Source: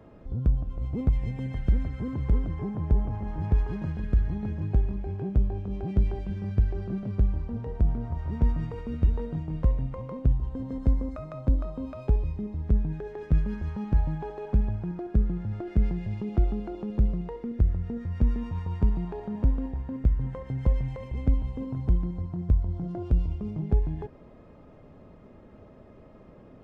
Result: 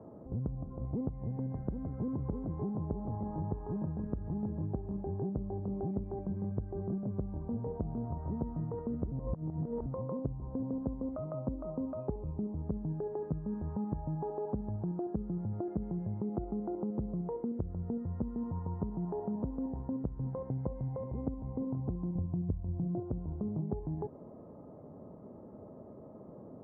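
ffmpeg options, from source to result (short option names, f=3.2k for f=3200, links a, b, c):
-filter_complex "[0:a]asettb=1/sr,asplit=3[a][b][c];[a]atrim=end=22.154[d];[b]atrim=start=22.15:end=23,asetpts=PTS-STARTPTS,afade=t=in:d=0.004:c=qsin,afade=t=out:st=0.846:d=0.004:c=qsin,lowshelf=f=290:g=11.5[e];[c]atrim=start=22.996[f];[d][e]acrossfade=d=0.004:c1=hsin:c2=qsin[g];[g][f]acrossfade=d=0.004:c1=qsin:c2=hsin,asplit=3[h][i][j];[h]atrim=end=9.122[k];[i]atrim=start=9.118:end=9.862,asetpts=PTS-STARTPTS,areverse[l];[j]atrim=start=9.858[m];[k][l]acrossfade=d=0.004:c1=hsin:c2=hsin[n];[n][m]acrossfade=d=0.004:c1=hsin:c2=hsin,highpass=120,acompressor=threshold=-34dB:ratio=6,lowpass=f=1k:w=0.5412,lowpass=f=1k:w=1.3066,volume=2dB"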